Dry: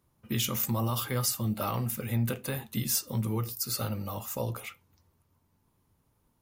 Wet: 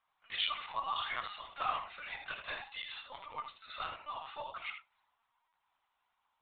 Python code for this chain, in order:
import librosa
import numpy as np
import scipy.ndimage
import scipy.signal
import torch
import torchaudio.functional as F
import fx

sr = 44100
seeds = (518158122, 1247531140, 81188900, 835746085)

p1 = scipy.signal.sosfilt(scipy.signal.butter(4, 810.0, 'highpass', fs=sr, output='sos'), x)
p2 = p1 + fx.room_early_taps(p1, sr, ms=(11, 77), db=(-6.0, -7.0), dry=0)
y = fx.lpc_vocoder(p2, sr, seeds[0], excitation='pitch_kept', order=16)